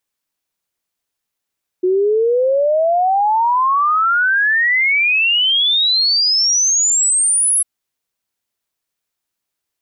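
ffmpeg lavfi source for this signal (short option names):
-f lavfi -i "aevalsrc='0.266*clip(min(t,5.8-t)/0.01,0,1)*sin(2*PI*360*5.8/log(11000/360)*(exp(log(11000/360)*t/5.8)-1))':d=5.8:s=44100"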